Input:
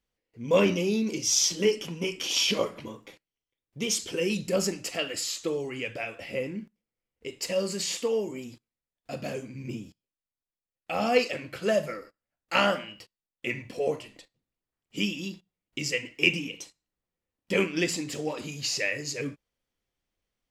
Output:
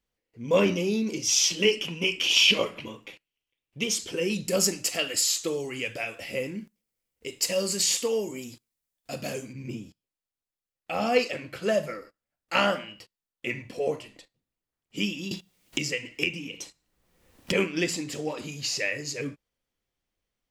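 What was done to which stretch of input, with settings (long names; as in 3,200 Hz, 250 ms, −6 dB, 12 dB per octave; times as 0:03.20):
0:01.28–0:03.84: parametric band 2,700 Hz +11.5 dB 0.61 octaves
0:04.48–0:09.53: high-shelf EQ 4,400 Hz +11.5 dB
0:15.31–0:17.52: multiband upward and downward compressor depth 100%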